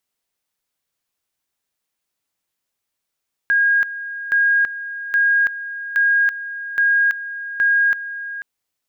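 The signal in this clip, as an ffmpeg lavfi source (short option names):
-f lavfi -i "aevalsrc='pow(10,(-12.5-13.5*gte(mod(t,0.82),0.33))/20)*sin(2*PI*1630*t)':d=4.92:s=44100"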